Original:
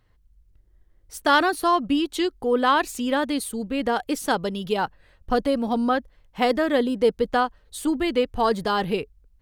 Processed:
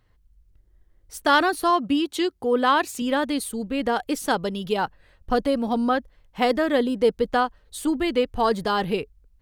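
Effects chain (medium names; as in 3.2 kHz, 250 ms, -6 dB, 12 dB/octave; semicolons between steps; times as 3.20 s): 1.70–3.02 s: high-pass 66 Hz 24 dB/octave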